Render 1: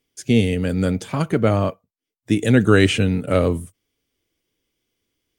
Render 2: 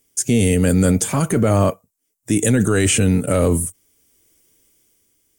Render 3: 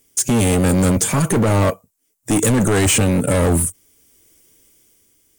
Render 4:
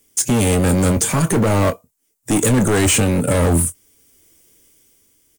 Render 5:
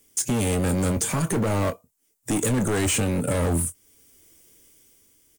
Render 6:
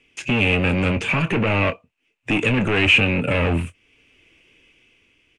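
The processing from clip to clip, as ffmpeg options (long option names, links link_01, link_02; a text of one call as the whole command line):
ffmpeg -i in.wav -af "highshelf=frequency=5600:width_type=q:width=1.5:gain=11.5,dynaudnorm=framelen=110:gausssize=11:maxgain=5dB,alimiter=limit=-12.5dB:level=0:latency=1:release=11,volume=5dB" out.wav
ffmpeg -i in.wav -af "volume=17.5dB,asoftclip=hard,volume=-17.5dB,volume=5dB" out.wav
ffmpeg -i in.wav -filter_complex "[0:a]acrossover=split=420|790|7600[link_01][link_02][link_03][link_04];[link_03]acrusher=bits=3:mode=log:mix=0:aa=0.000001[link_05];[link_01][link_02][link_05][link_04]amix=inputs=4:normalize=0,asplit=2[link_06][link_07];[link_07]adelay=24,volume=-13dB[link_08];[link_06][link_08]amix=inputs=2:normalize=0" out.wav
ffmpeg -i in.wav -af "acompressor=threshold=-30dB:ratio=1.5,volume=-1.5dB" out.wav
ffmpeg -i in.wav -af "lowpass=frequency=2600:width_type=q:width=9.1,volume=2.5dB" out.wav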